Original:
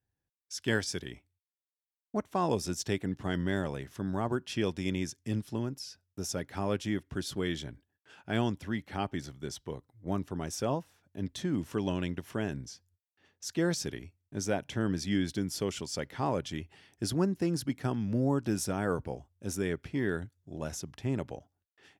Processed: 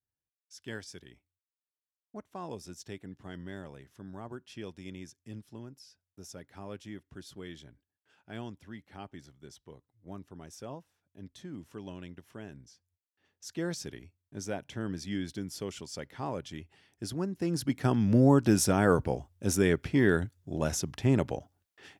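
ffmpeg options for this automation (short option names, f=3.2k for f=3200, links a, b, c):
-af "volume=7dB,afade=t=in:st=12.71:d=0.85:silence=0.473151,afade=t=in:st=17.31:d=0.8:silence=0.251189"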